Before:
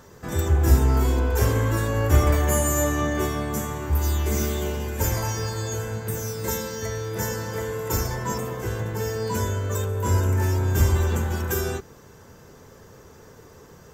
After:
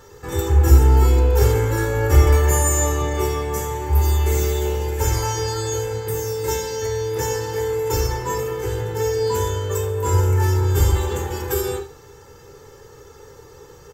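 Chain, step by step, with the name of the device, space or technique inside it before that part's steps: microphone above a desk (comb 2.3 ms, depth 73%; reverb RT60 0.50 s, pre-delay 4 ms, DRR 4.5 dB)

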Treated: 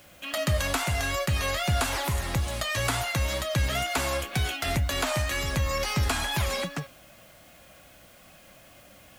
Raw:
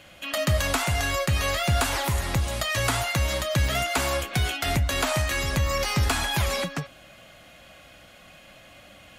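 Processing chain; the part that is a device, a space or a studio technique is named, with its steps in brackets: plain cassette with noise reduction switched in (mismatched tape noise reduction decoder only; wow and flutter 29 cents; white noise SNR 29 dB); gain -2.5 dB

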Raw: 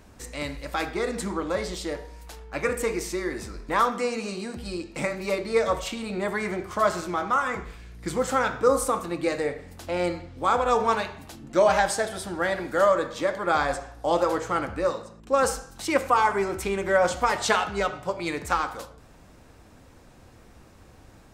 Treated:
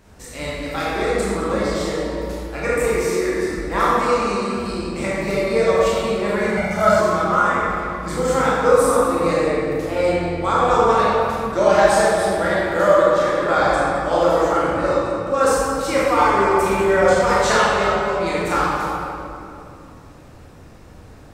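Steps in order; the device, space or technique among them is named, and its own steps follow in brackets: stairwell (reverb RT60 2.7 s, pre-delay 18 ms, DRR -7.5 dB); 6.57–7 comb 1.4 ms, depth 80%; gain -1 dB

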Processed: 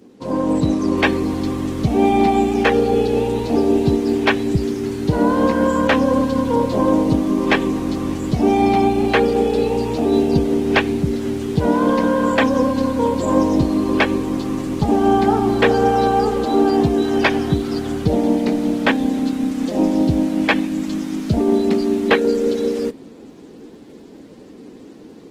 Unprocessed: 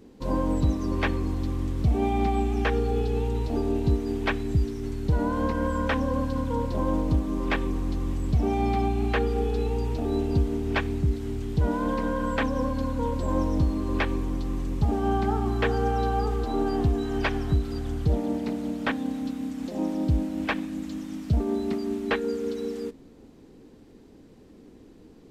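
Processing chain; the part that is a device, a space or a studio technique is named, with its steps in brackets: dynamic EQ 1300 Hz, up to -4 dB, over -45 dBFS, Q 2; video call (HPF 170 Hz 12 dB/oct; AGC gain up to 6 dB; gain +6 dB; Opus 16 kbps 48000 Hz)

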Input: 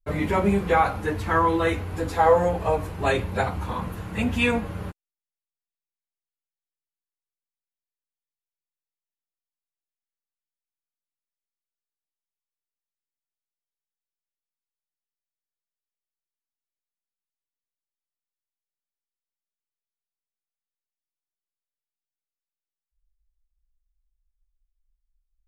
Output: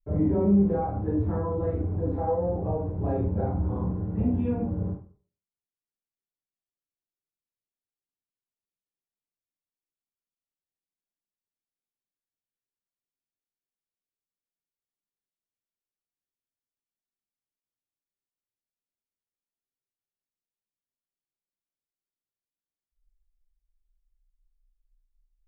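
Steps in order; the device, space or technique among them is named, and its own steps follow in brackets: television next door (compressor 4:1, threshold -23 dBFS, peak gain reduction 9.5 dB; LPF 430 Hz 12 dB/oct; reverb RT60 0.45 s, pre-delay 21 ms, DRR -3.5 dB); gain -2.5 dB

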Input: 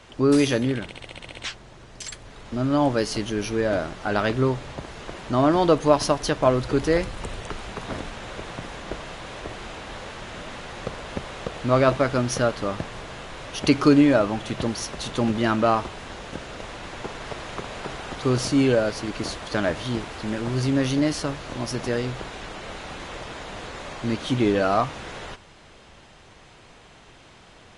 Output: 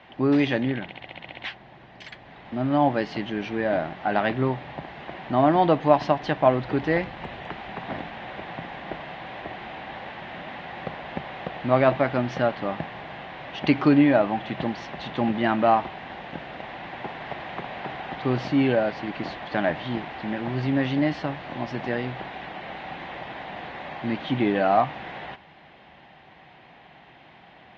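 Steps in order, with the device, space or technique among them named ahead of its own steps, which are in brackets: guitar cabinet (speaker cabinet 97–3400 Hz, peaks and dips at 100 Hz -8 dB, 160 Hz +3 dB, 450 Hz -6 dB, 770 Hz +8 dB, 1300 Hz -5 dB, 1900 Hz +5 dB); gain -1 dB

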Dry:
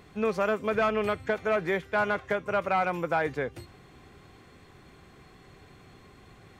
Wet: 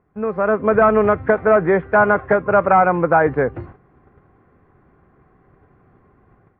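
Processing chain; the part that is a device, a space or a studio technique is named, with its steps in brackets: gate -49 dBFS, range -14 dB; action camera in a waterproof case (LPF 1600 Hz 24 dB/oct; AGC gain up to 10 dB; gain +3.5 dB; AAC 48 kbps 44100 Hz)

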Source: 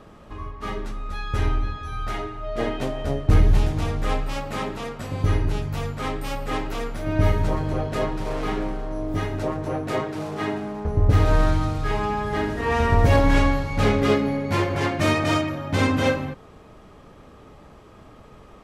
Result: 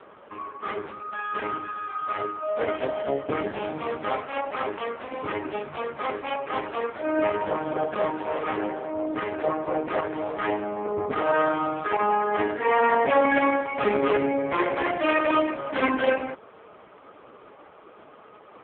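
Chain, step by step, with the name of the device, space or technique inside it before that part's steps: telephone (BPF 390–3100 Hz; soft clip -18 dBFS, distortion -17 dB; gain +6 dB; AMR-NB 4.75 kbps 8000 Hz)

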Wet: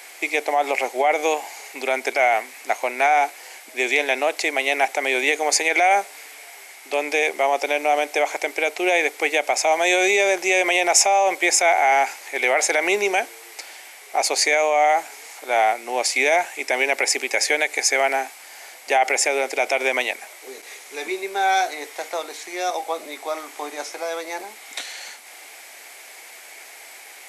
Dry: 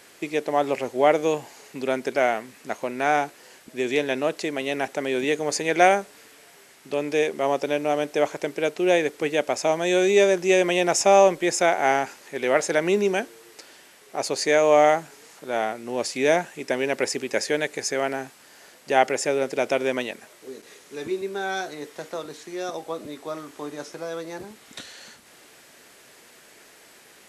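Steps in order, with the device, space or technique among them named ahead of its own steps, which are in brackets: laptop speaker (HPF 280 Hz 24 dB/oct; bell 770 Hz +11.5 dB 0.58 oct; bell 2200 Hz +11.5 dB 0.31 oct; limiter -11 dBFS, peak gain reduction 12.5 dB); tilt +2.5 dB/oct; gain +2 dB

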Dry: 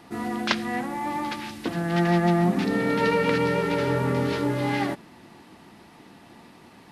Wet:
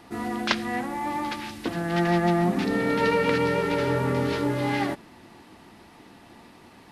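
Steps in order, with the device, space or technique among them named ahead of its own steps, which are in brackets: low shelf boost with a cut just above (low shelf 96 Hz +5.5 dB; bell 160 Hz -4.5 dB 0.88 oct)

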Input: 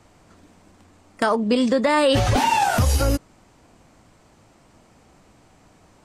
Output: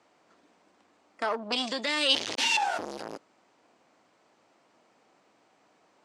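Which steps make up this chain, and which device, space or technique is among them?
1.52–2.57 EQ curve 370 Hz 0 dB, 800 Hz -11 dB, 3100 Hz +13 dB; public-address speaker with an overloaded transformer (core saturation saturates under 1600 Hz; BPF 350–5700 Hz); gain -7.5 dB

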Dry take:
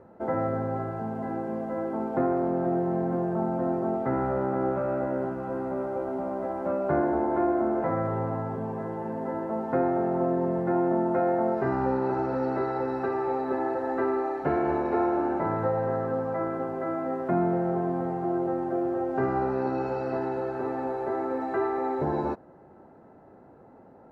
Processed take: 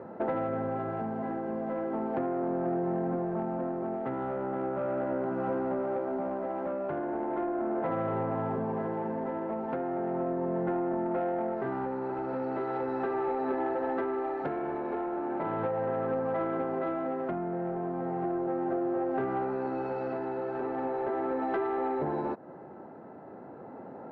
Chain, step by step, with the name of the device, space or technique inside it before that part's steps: AM radio (BPF 140–3400 Hz; compressor 10:1, threshold -35 dBFS, peak gain reduction 14.5 dB; soft clip -30 dBFS, distortion -22 dB; tremolo 0.37 Hz, depth 32%); gain +9 dB

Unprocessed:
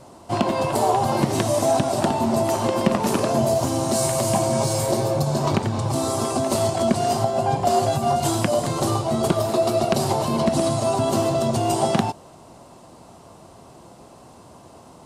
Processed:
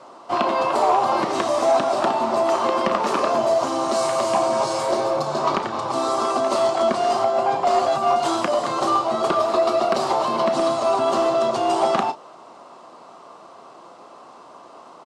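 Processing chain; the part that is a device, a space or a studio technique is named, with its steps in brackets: intercom (BPF 370–4900 Hz; bell 1200 Hz +9 dB 0.44 oct; soft clip -10.5 dBFS, distortion -23 dB; doubler 33 ms -12 dB); gain +2 dB

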